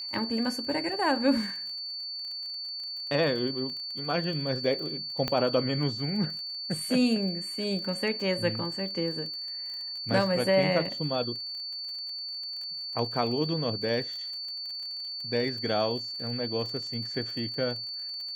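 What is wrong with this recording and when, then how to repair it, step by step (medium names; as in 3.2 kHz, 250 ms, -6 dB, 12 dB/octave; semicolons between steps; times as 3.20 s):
crackle 38 per s -37 dBFS
whine 4.5 kHz -34 dBFS
5.28 s: pop -14 dBFS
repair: de-click; band-stop 4.5 kHz, Q 30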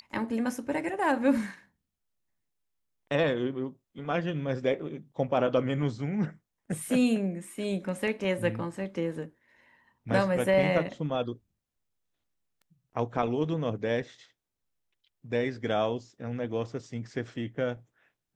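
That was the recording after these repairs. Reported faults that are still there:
5.28 s: pop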